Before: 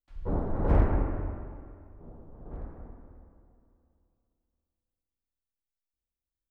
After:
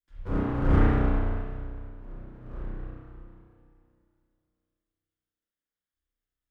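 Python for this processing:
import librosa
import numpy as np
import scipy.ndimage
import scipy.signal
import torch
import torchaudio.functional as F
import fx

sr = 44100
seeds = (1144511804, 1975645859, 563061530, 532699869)

y = fx.lower_of_two(x, sr, delay_ms=0.58)
y = fx.rev_spring(y, sr, rt60_s=1.1, pass_ms=(32,), chirp_ms=50, drr_db=-7.0)
y = y * 10.0 ** (-3.5 / 20.0)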